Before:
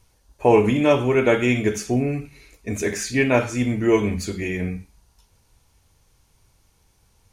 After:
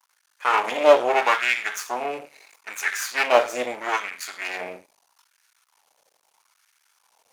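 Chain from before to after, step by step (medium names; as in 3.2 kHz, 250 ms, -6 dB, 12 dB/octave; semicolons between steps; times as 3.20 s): half-wave rectifier; LFO high-pass sine 0.78 Hz 570–1600 Hz; trim +3 dB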